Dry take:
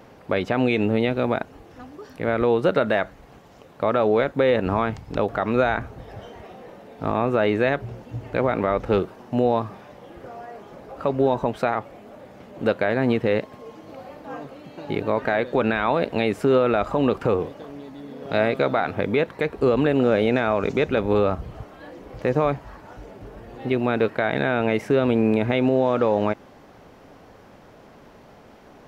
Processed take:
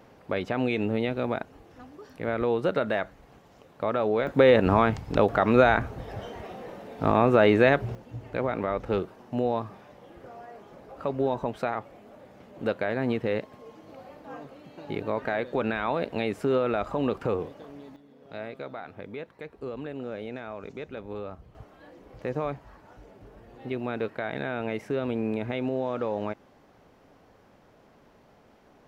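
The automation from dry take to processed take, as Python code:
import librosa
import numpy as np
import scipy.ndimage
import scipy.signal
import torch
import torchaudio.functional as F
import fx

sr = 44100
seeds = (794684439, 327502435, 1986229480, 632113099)

y = fx.gain(x, sr, db=fx.steps((0.0, -6.0), (4.27, 1.5), (7.95, -6.5), (17.96, -17.0), (21.55, -9.5)))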